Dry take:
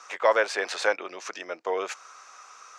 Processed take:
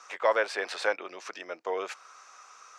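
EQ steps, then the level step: dynamic EQ 6600 Hz, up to -6 dB, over -54 dBFS, Q 3.5; -3.5 dB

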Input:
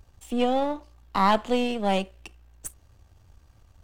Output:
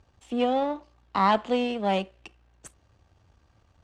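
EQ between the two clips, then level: HPF 140 Hz 6 dB/oct; air absorption 90 m; 0.0 dB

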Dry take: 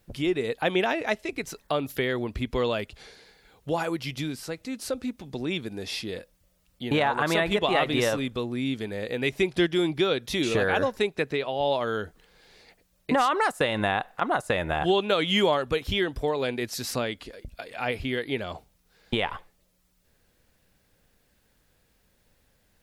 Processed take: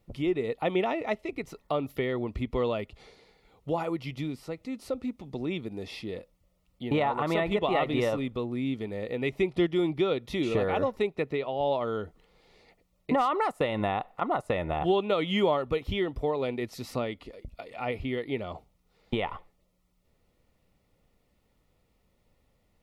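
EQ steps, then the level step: dynamic EQ 7000 Hz, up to -4 dB, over -48 dBFS, Q 0.78; Butterworth band-stop 1600 Hz, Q 4.7; high shelf 3000 Hz -10.5 dB; -1.5 dB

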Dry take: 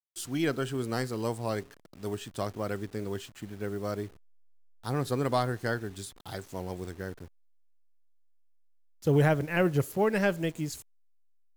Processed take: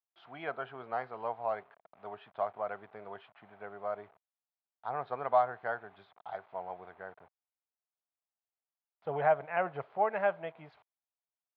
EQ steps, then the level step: air absorption 370 m; speaker cabinet 180–3100 Hz, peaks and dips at 540 Hz -7 dB, 1800 Hz -5 dB, 2800 Hz -6 dB; resonant low shelf 450 Hz -13 dB, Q 3; 0.0 dB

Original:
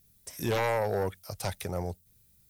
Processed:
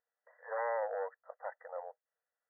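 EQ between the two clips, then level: brick-wall FIR band-pass 460–2000 Hz; -5.5 dB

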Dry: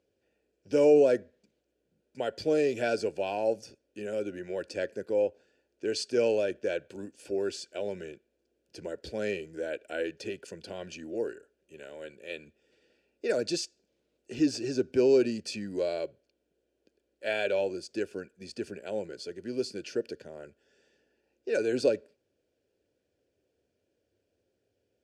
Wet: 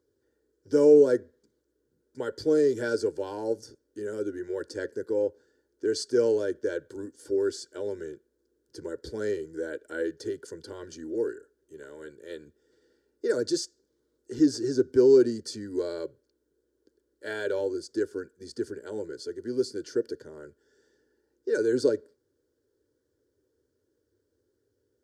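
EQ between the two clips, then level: bell 170 Hz +9.5 dB 1.1 oct; notch 540 Hz, Q 12; fixed phaser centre 690 Hz, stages 6; +3.5 dB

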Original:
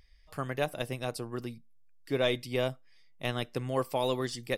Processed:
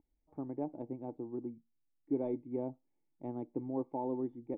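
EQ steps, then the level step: vocal tract filter u; low shelf 70 Hz -6 dB; low shelf 140 Hz -7.5 dB; +7.0 dB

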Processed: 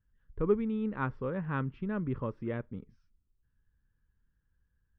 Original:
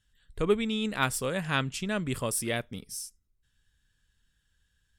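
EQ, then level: Chebyshev low-pass 1000 Hz, order 2; air absorption 250 m; bell 690 Hz -13 dB 0.4 oct; 0.0 dB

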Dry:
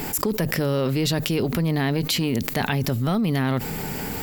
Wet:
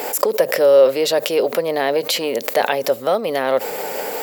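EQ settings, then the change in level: resonant high-pass 540 Hz, resonance Q 4.9; +3.5 dB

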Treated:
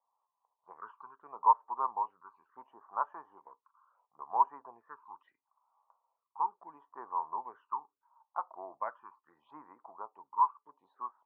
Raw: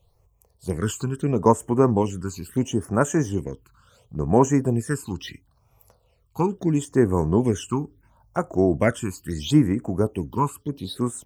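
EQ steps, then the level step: Butterworth band-pass 1000 Hz, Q 3.2; air absorption 230 m; 0.0 dB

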